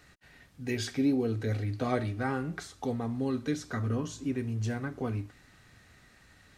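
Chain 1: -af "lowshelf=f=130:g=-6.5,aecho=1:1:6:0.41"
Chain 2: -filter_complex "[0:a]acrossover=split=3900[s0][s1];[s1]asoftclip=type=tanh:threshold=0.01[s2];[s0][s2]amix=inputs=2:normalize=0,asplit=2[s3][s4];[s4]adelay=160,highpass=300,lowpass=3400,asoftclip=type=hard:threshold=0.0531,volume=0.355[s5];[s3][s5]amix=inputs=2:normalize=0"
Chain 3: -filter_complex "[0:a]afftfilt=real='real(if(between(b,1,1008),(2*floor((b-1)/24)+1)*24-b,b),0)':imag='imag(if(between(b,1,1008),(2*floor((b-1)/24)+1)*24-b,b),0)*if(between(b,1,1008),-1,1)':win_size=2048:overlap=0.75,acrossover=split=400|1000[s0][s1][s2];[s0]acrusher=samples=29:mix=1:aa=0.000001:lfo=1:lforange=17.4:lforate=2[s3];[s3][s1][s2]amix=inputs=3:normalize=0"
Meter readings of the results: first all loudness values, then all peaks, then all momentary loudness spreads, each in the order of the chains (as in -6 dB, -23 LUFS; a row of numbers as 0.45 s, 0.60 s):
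-34.5 LUFS, -32.5 LUFS, -33.0 LUFS; -16.5 dBFS, -16.0 dBFS, -17.5 dBFS; 7 LU, 7 LU, 8 LU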